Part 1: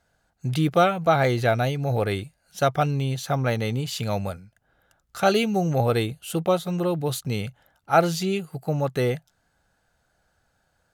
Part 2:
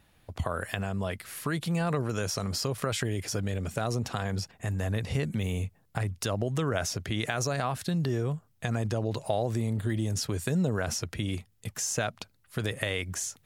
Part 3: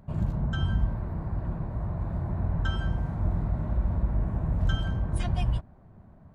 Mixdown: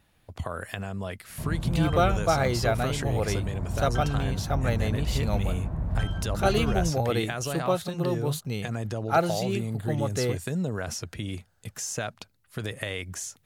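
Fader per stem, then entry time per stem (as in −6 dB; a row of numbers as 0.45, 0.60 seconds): −4.5, −2.0, −2.5 decibels; 1.20, 0.00, 1.30 seconds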